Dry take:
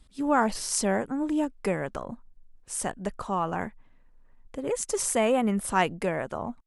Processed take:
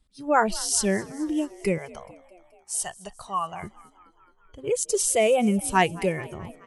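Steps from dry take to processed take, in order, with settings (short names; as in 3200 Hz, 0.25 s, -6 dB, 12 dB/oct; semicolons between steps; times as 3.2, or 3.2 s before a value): spectral noise reduction 15 dB; 1.78–3.63 resonant low shelf 480 Hz -12 dB, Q 3; frequency-shifting echo 0.214 s, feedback 65%, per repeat +58 Hz, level -21.5 dB; gain +4.5 dB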